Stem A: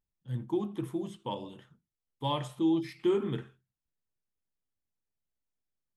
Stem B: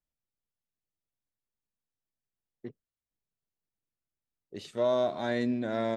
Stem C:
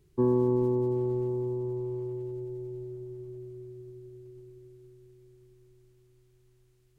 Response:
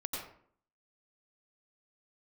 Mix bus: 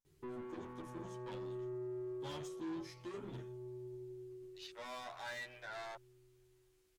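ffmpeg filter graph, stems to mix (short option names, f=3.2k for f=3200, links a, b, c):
-filter_complex "[0:a]equalizer=f=6.1k:t=o:w=0.73:g=14.5,volume=-6.5dB[a];[1:a]highpass=f=820:w=0.5412,highpass=f=820:w=1.3066,afwtdn=0.00251,volume=2dB[b];[2:a]lowshelf=f=300:g=-7,acompressor=threshold=-39dB:ratio=2.5,adelay=50,volume=2dB[c];[a][b][c]amix=inputs=3:normalize=0,asoftclip=type=tanh:threshold=-39dB,asplit=2[d][e];[e]adelay=10.6,afreqshift=0.46[f];[d][f]amix=inputs=2:normalize=1"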